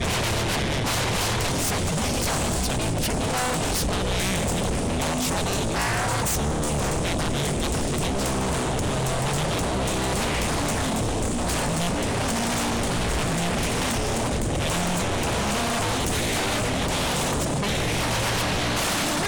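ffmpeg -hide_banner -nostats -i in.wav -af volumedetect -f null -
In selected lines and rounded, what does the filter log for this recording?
mean_volume: -24.3 dB
max_volume: -17.2 dB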